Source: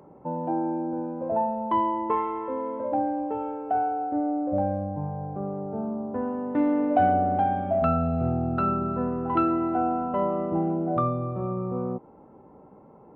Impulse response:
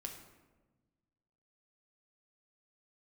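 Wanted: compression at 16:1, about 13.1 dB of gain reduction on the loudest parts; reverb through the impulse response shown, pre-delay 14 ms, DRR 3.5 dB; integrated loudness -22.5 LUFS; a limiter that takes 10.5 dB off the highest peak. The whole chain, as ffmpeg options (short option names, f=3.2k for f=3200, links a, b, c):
-filter_complex "[0:a]acompressor=threshold=-30dB:ratio=16,alimiter=level_in=7.5dB:limit=-24dB:level=0:latency=1,volume=-7.5dB,asplit=2[a][b];[1:a]atrim=start_sample=2205,adelay=14[c];[b][c]afir=irnorm=-1:irlink=0,volume=-1dB[d];[a][d]amix=inputs=2:normalize=0,volume=16dB"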